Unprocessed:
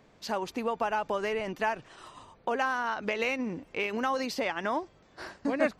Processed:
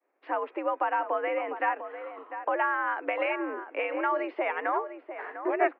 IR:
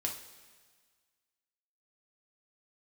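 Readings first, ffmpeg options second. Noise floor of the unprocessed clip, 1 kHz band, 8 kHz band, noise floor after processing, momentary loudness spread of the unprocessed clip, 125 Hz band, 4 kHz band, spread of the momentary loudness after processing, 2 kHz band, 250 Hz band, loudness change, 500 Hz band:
−60 dBFS, +3.5 dB, below −30 dB, −61 dBFS, 14 LU, below −30 dB, −9.0 dB, 11 LU, +1.5 dB, −2.5 dB, +1.0 dB, +1.5 dB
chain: -filter_complex "[0:a]asplit=2[link_01][link_02];[link_02]adelay=699.7,volume=-10dB,highshelf=frequency=4000:gain=-15.7[link_03];[link_01][link_03]amix=inputs=2:normalize=0,agate=range=-33dB:threshold=-49dB:ratio=3:detection=peak,highpass=frequency=240:width_type=q:width=0.5412,highpass=frequency=240:width_type=q:width=1.307,lowpass=frequency=2300:width_type=q:width=0.5176,lowpass=frequency=2300:width_type=q:width=0.7071,lowpass=frequency=2300:width_type=q:width=1.932,afreqshift=84,volume=2dB"

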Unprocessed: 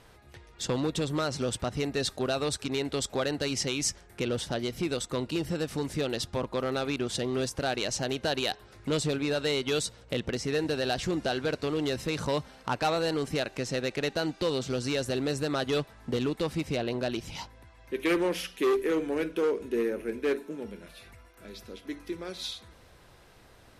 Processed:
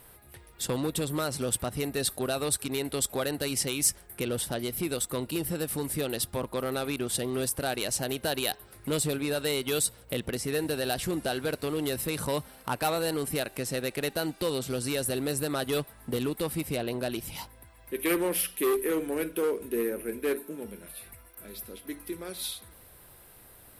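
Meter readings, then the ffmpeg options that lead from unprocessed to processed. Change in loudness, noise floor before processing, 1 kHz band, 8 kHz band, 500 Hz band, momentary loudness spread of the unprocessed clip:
0.0 dB, −56 dBFS, −1.0 dB, +6.5 dB, −1.0 dB, 9 LU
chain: -af "aexciter=amount=6.3:drive=8.6:freq=9000,volume=-1dB"

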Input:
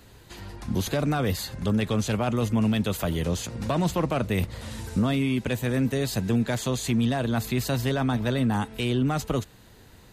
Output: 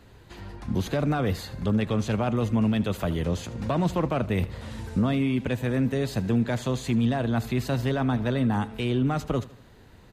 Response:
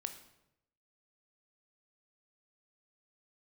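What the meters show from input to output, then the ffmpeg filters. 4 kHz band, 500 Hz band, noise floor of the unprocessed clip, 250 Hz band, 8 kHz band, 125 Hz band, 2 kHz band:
−4.5 dB, 0.0 dB, −51 dBFS, 0.0 dB, −8.5 dB, 0.0 dB, −1.5 dB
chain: -filter_complex "[0:a]highshelf=frequency=4500:gain=-11.5,asplit=2[link_01][link_02];[link_02]aecho=0:1:77|154|231|308:0.119|0.0547|0.0251|0.0116[link_03];[link_01][link_03]amix=inputs=2:normalize=0"

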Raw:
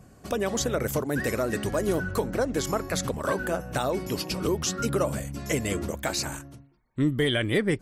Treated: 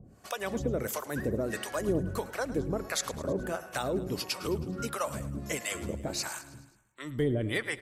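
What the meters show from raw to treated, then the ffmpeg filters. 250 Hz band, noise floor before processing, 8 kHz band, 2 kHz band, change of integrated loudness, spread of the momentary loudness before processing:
−5.5 dB, −54 dBFS, −5.0 dB, −5.0 dB, −5.5 dB, 5 LU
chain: -filter_complex "[0:a]acrossover=split=630[link_01][link_02];[link_01]aeval=exprs='val(0)*(1-1/2+1/2*cos(2*PI*1.5*n/s))':channel_layout=same[link_03];[link_02]aeval=exprs='val(0)*(1-1/2-1/2*cos(2*PI*1.5*n/s))':channel_layout=same[link_04];[link_03][link_04]amix=inputs=2:normalize=0,asplit=2[link_05][link_06];[link_06]aecho=0:1:106|212|318|424|530:0.15|0.0823|0.0453|0.0249|0.0137[link_07];[link_05][link_07]amix=inputs=2:normalize=0"

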